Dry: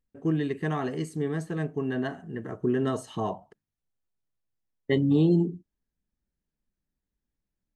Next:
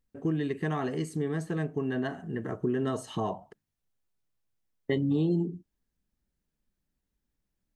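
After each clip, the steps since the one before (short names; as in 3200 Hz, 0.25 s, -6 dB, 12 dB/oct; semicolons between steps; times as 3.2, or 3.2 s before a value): compressor 2:1, threshold -33 dBFS, peak gain reduction 8.5 dB; gain +3 dB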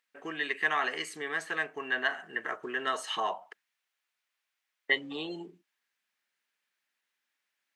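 Bessel high-pass 820 Hz, order 2; bell 2100 Hz +14 dB 2.2 oct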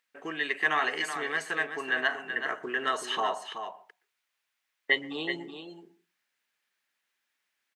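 echo 0.378 s -8.5 dB; on a send at -21 dB: reverb RT60 0.30 s, pre-delay 0.117 s; on the sum: gain +2 dB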